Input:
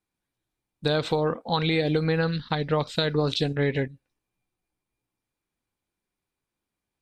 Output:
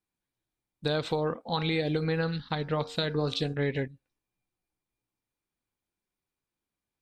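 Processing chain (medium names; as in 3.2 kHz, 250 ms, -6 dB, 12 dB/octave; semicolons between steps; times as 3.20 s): 1.40–3.54 s: de-hum 92.21 Hz, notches 19; trim -4.5 dB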